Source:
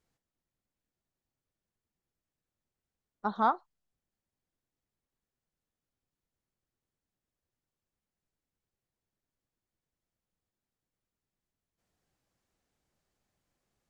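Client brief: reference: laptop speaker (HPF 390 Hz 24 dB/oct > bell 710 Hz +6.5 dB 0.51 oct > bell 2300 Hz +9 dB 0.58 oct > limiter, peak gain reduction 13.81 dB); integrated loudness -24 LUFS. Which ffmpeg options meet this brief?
-af "highpass=f=390:w=0.5412,highpass=f=390:w=1.3066,equalizer=f=710:t=o:w=0.51:g=6.5,equalizer=f=2.3k:t=o:w=0.58:g=9,volume=15dB,alimiter=limit=-10.5dB:level=0:latency=1"

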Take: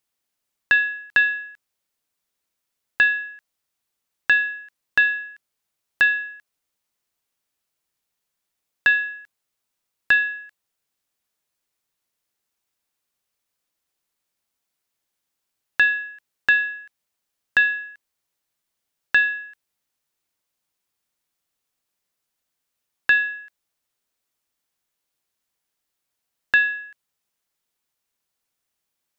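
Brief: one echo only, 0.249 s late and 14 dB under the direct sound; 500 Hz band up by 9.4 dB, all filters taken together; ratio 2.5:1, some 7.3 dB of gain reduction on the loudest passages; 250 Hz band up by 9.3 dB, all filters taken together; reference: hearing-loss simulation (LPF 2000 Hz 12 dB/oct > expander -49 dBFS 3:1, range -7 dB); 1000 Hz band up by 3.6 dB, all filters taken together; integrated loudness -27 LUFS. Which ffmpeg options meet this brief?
-af "equalizer=f=250:t=o:g=9,equalizer=f=500:t=o:g=8.5,equalizer=f=1k:t=o:g=3,acompressor=threshold=-22dB:ratio=2.5,lowpass=2k,aecho=1:1:249:0.2,agate=range=-7dB:threshold=-49dB:ratio=3,volume=0.5dB"

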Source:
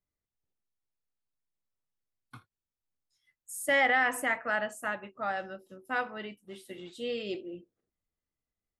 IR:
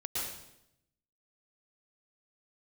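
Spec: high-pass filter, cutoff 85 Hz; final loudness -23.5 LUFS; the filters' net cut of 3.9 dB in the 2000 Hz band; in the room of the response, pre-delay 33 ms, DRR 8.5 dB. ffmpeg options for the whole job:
-filter_complex "[0:a]highpass=85,equalizer=f=2k:t=o:g=-4.5,asplit=2[a][b];[1:a]atrim=start_sample=2205,adelay=33[c];[b][c]afir=irnorm=-1:irlink=0,volume=-12dB[d];[a][d]amix=inputs=2:normalize=0,volume=9dB"

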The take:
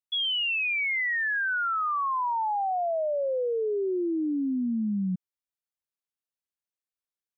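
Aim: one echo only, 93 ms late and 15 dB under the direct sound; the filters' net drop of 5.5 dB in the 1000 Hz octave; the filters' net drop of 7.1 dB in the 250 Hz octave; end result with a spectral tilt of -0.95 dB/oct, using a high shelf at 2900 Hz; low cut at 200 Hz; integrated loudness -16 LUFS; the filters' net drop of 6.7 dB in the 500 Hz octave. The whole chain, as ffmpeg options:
-af "highpass=200,equalizer=f=250:t=o:g=-5,equalizer=f=500:t=o:g=-5.5,equalizer=f=1k:t=o:g=-4,highshelf=f=2.9k:g=-8.5,aecho=1:1:93:0.178,volume=16dB"

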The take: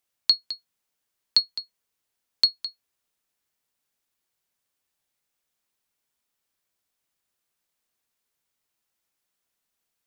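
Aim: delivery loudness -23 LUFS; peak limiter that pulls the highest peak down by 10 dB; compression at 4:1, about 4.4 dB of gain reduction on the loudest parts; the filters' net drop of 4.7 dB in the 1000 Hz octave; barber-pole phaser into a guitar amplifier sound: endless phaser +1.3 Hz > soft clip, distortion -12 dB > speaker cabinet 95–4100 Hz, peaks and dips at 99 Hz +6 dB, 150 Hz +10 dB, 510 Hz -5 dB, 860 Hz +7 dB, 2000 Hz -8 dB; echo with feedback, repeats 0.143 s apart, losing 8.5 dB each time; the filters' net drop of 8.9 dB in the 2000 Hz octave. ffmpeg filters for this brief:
-filter_complex "[0:a]equalizer=f=1k:t=o:g=-8,equalizer=f=2k:t=o:g=-6.5,acompressor=threshold=-22dB:ratio=4,alimiter=limit=-18dB:level=0:latency=1,aecho=1:1:143|286|429|572:0.376|0.143|0.0543|0.0206,asplit=2[a][b];[b]afreqshift=1.3[c];[a][c]amix=inputs=2:normalize=1,asoftclip=threshold=-30dB,highpass=95,equalizer=f=99:t=q:w=4:g=6,equalizer=f=150:t=q:w=4:g=10,equalizer=f=510:t=q:w=4:g=-5,equalizer=f=860:t=q:w=4:g=7,equalizer=f=2k:t=q:w=4:g=-8,lowpass=f=4.1k:w=0.5412,lowpass=f=4.1k:w=1.3066,volume=22.5dB"

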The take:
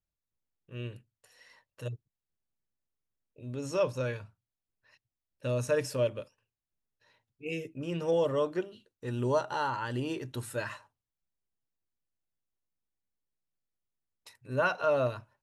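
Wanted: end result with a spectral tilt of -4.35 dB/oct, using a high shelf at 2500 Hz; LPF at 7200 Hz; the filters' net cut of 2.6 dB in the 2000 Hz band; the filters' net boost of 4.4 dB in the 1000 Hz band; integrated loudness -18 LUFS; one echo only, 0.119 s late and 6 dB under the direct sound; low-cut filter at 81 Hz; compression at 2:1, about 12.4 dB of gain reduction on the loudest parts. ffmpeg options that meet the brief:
-af "highpass=81,lowpass=7.2k,equalizer=f=1k:t=o:g=8,equalizer=f=2k:t=o:g=-5.5,highshelf=f=2.5k:g=-8,acompressor=threshold=-45dB:ratio=2,aecho=1:1:119:0.501,volume=23.5dB"

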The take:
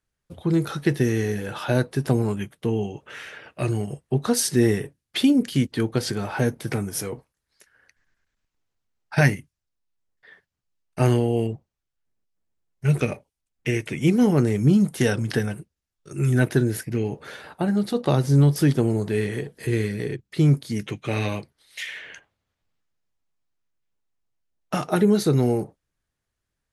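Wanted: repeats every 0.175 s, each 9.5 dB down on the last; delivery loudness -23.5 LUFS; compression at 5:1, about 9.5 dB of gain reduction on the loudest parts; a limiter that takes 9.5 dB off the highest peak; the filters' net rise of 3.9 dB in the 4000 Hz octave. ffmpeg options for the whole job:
-af "equalizer=f=4k:t=o:g=5,acompressor=threshold=-24dB:ratio=5,alimiter=limit=-20.5dB:level=0:latency=1,aecho=1:1:175|350|525|700:0.335|0.111|0.0365|0.012,volume=7.5dB"

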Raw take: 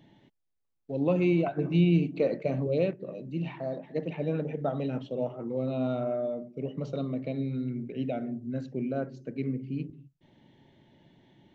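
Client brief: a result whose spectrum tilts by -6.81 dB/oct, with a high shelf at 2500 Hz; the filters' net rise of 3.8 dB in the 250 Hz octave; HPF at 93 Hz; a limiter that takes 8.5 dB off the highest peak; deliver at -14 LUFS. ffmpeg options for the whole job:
-af "highpass=93,equalizer=f=250:t=o:g=5.5,highshelf=f=2.5k:g=-8.5,volume=16.5dB,alimiter=limit=-4dB:level=0:latency=1"

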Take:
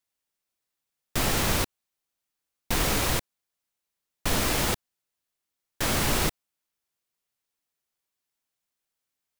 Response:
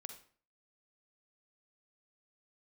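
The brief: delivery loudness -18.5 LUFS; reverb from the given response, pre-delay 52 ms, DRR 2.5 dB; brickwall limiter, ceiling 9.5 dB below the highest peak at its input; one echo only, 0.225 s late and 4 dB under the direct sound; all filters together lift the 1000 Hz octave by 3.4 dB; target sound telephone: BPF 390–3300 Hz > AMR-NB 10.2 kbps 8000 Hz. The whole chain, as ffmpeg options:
-filter_complex "[0:a]equalizer=f=1k:t=o:g=4.5,alimiter=limit=-20dB:level=0:latency=1,aecho=1:1:225:0.631,asplit=2[a][b];[1:a]atrim=start_sample=2205,adelay=52[c];[b][c]afir=irnorm=-1:irlink=0,volume=2.5dB[d];[a][d]amix=inputs=2:normalize=0,highpass=390,lowpass=3.3k,volume=16.5dB" -ar 8000 -c:a libopencore_amrnb -b:a 10200

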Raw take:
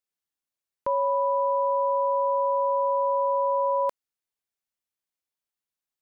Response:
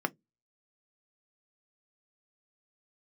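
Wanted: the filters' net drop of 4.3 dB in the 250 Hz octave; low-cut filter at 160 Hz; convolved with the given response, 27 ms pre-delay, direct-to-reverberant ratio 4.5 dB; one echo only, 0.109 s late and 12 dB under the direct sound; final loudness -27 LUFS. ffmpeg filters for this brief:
-filter_complex "[0:a]highpass=160,equalizer=f=250:t=o:g=-5.5,aecho=1:1:109:0.251,asplit=2[a][b];[1:a]atrim=start_sample=2205,adelay=27[c];[b][c]afir=irnorm=-1:irlink=0,volume=-11.5dB[d];[a][d]amix=inputs=2:normalize=0,volume=-0.5dB"

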